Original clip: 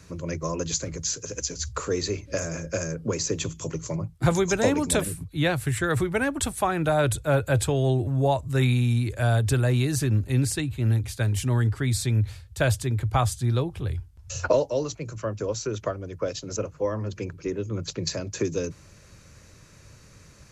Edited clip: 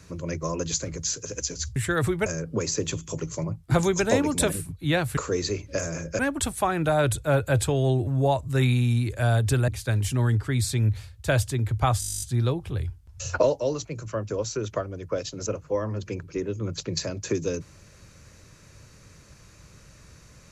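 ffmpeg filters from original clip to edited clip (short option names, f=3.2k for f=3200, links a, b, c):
-filter_complex "[0:a]asplit=17[a][b][c][d][e][f][g][h][i][j][k][l][m][n][o][p][q];[a]atrim=end=1.762[r];[b]atrim=start=5.688:end=6.192[s];[c]atrim=start=2.778:end=5.692[t];[d]atrim=start=1.758:end=2.782[u];[e]atrim=start=6.188:end=9.682[v];[f]atrim=start=10.998:end=13.342[w];[g]atrim=start=13.318:end=13.342[x];[h]atrim=start=13.318:end=13.342[y];[i]atrim=start=13.318:end=13.342[z];[j]atrim=start=13.318:end=13.342[aa];[k]atrim=start=13.318:end=13.342[ab];[l]atrim=start=13.318:end=13.342[ac];[m]atrim=start=13.318:end=13.342[ad];[n]atrim=start=13.318:end=13.342[ae];[o]atrim=start=13.318:end=13.342[af];[p]atrim=start=13.318:end=13.342[ag];[q]atrim=start=13.318[ah];[r][s]acrossfade=d=0.004:c1=hsin:c2=hsin[ai];[ai][t]acrossfade=d=0.004:c1=hsin:c2=hsin[aj];[aj][u]acrossfade=d=0.004:c1=hsin:c2=hsin[ak];[ak][v]acrossfade=d=0.004:c1=hsin:c2=hsin[al];[al][w]acrossfade=d=0.004:c1=hsin:c2=hsin[am];[am][x]acrossfade=d=0.004:c1=hsin:c2=hsin[an];[an][y]acrossfade=d=0.004:c1=hsin:c2=hsin[ao];[ao][z]acrossfade=d=0.004:c1=hsin:c2=hsin[ap];[ap][aa]acrossfade=d=0.004:c1=hsin:c2=hsin[aq];[aq][ab]acrossfade=d=0.004:c1=hsin:c2=hsin[ar];[ar][ac]acrossfade=d=0.004:c1=hsin:c2=hsin[as];[as][ad]acrossfade=d=0.004:c1=hsin:c2=hsin[at];[at][ae]acrossfade=d=0.004:c1=hsin:c2=hsin[au];[au][af]acrossfade=d=0.004:c1=hsin:c2=hsin[av];[av][ag]acrossfade=d=0.004:c1=hsin:c2=hsin[aw];[aw][ah]acrossfade=d=0.004:c1=hsin:c2=hsin"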